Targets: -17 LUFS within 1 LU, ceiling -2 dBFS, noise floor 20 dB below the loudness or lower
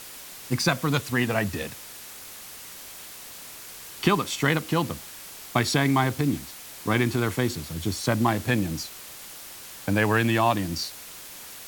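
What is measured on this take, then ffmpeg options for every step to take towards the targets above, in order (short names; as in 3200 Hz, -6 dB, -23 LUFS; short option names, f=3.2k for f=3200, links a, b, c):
noise floor -42 dBFS; noise floor target -46 dBFS; loudness -25.5 LUFS; peak -7.0 dBFS; loudness target -17.0 LUFS
-> -af "afftdn=nr=6:nf=-42"
-af "volume=8.5dB,alimiter=limit=-2dB:level=0:latency=1"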